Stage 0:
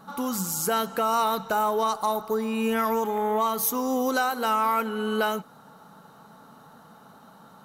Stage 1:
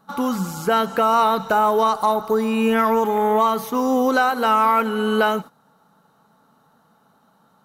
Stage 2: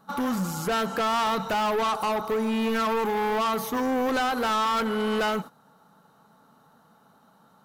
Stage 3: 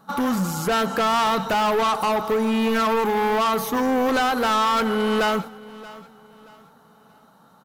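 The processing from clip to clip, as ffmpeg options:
-filter_complex "[0:a]acrossover=split=3600[a][b];[b]acompressor=threshold=-45dB:ratio=4:attack=1:release=60[c];[a][c]amix=inputs=2:normalize=0,agate=range=-15dB:threshold=-39dB:ratio=16:detection=peak,volume=7dB"
-af "asoftclip=type=tanh:threshold=-22.5dB"
-af "aecho=1:1:628|1256|1884:0.106|0.035|0.0115,volume=4.5dB"

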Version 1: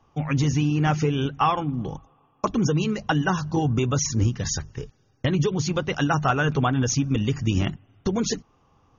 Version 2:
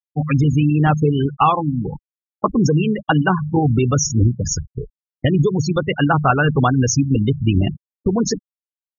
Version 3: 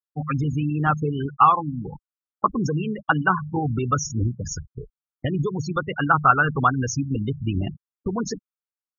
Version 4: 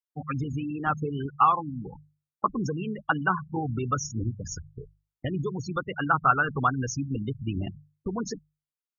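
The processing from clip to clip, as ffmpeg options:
-af "afftfilt=real='re*gte(hypot(re,im),0.0794)':imag='im*gte(hypot(re,im),0.0794)':win_size=1024:overlap=0.75,volume=6.5dB"
-af "firequalizer=gain_entry='entry(630,0);entry(1300,13);entry(1900,-1)':delay=0.05:min_phase=1,volume=-8.5dB"
-af "bandreject=f=50:t=h:w=6,bandreject=f=100:t=h:w=6,bandreject=f=150:t=h:w=6,volume=-5dB"

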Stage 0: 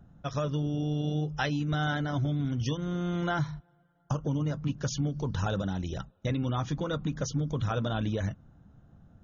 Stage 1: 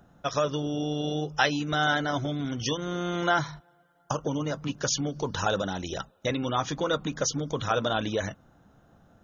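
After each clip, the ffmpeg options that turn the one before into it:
-af "bass=f=250:g=-14,treble=f=4k:g=3,volume=7.5dB"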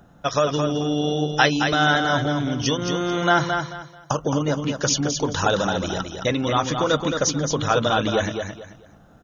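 -af "aecho=1:1:219|438|657:0.501|0.13|0.0339,volume=6dB"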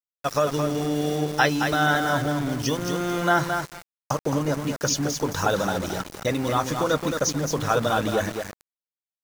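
-af "aeval=exprs='val(0)*gte(abs(val(0)),0.0376)':c=same,equalizer=f=3.2k:t=o:w=0.64:g=-6,volume=-2dB"

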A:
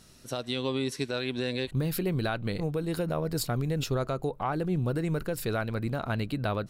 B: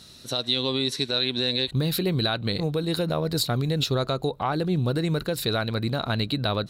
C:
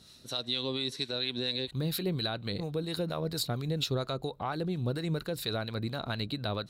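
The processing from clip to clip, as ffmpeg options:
-filter_complex "[0:a]highpass=47,equalizer=f=3.9k:w=3.6:g=14,asplit=2[a][b];[b]alimiter=limit=-19.5dB:level=0:latency=1:release=88,volume=1.5dB[c];[a][c]amix=inputs=2:normalize=0,volume=-2.5dB"
-filter_complex "[0:a]acrossover=split=770[a][b];[a]aeval=exprs='val(0)*(1-0.5/2+0.5/2*cos(2*PI*4.3*n/s))':c=same[c];[b]aeval=exprs='val(0)*(1-0.5/2-0.5/2*cos(2*PI*4.3*n/s))':c=same[d];[c][d]amix=inputs=2:normalize=0,volume=-5.5dB"

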